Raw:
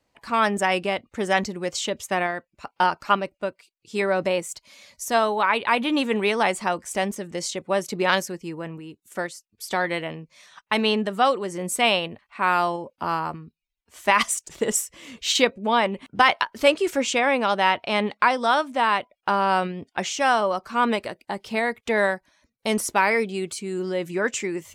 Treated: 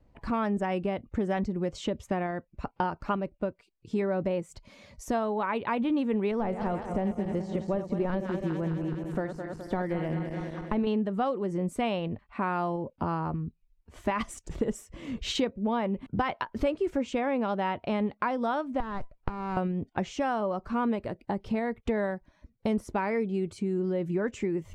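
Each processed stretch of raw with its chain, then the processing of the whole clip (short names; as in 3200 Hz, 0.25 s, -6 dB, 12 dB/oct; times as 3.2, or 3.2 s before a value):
6.31–10.87 regenerating reverse delay 0.105 s, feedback 75%, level -10.5 dB + de-esser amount 100%
18.8–19.57 HPF 810 Hz + compressor 3:1, threshold -29 dBFS + running maximum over 9 samples
whole clip: tilt -4.5 dB/oct; compressor 3:1, threshold -29 dBFS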